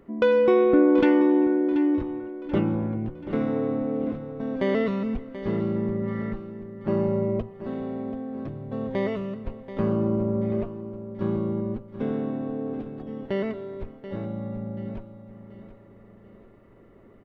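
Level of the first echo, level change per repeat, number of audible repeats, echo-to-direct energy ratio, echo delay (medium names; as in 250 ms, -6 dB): -12.5 dB, -7.5 dB, 4, -11.5 dB, 733 ms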